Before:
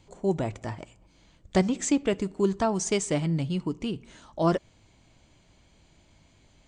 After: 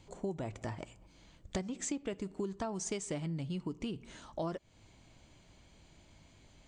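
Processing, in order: compressor 6:1, threshold -34 dBFS, peak gain reduction 16.5 dB; gain -1 dB

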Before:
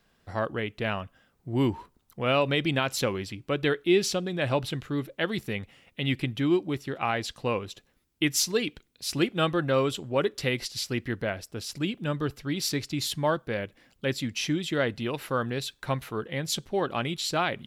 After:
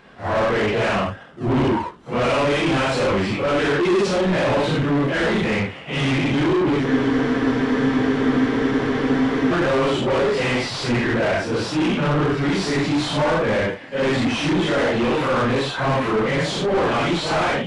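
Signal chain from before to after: phase scrambler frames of 0.2 s; tone controls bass +5 dB, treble -6 dB; in parallel at -7 dB: decimation with a swept rate 25×, swing 60% 2.2 Hz; on the sum: overdrive pedal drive 36 dB, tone 1500 Hz, clips at -6.5 dBFS; downsampling 22050 Hz; spectral freeze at 6.87, 2.64 s; gain -4.5 dB

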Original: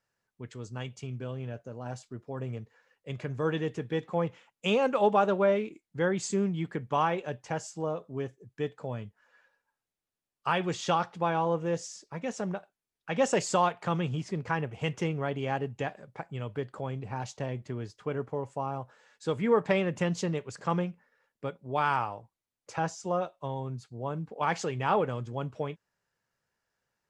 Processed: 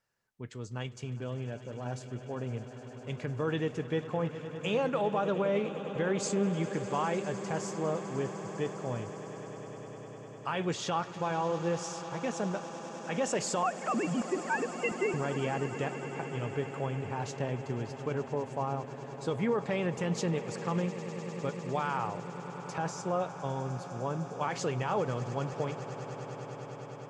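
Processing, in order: 13.63–15.14 sine-wave speech; limiter -21.5 dBFS, peak gain reduction 9 dB; swelling echo 0.101 s, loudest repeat 8, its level -18 dB

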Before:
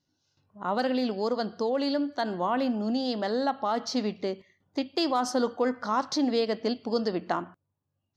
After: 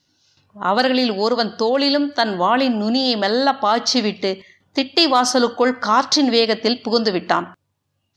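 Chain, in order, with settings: bell 3400 Hz +8.5 dB 2.8 oct; gain +8.5 dB

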